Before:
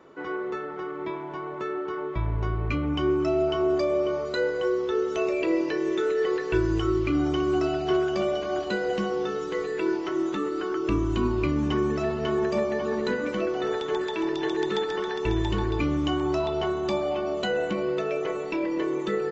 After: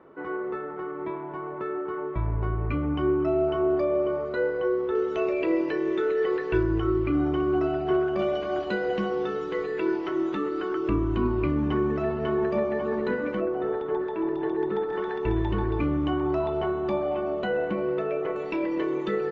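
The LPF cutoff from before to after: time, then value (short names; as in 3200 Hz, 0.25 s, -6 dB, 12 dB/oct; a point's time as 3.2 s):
1800 Hz
from 4.95 s 2800 Hz
from 6.63 s 1900 Hz
from 8.19 s 3200 Hz
from 10.88 s 2100 Hz
from 13.4 s 1200 Hz
from 14.93 s 1900 Hz
from 18.36 s 3500 Hz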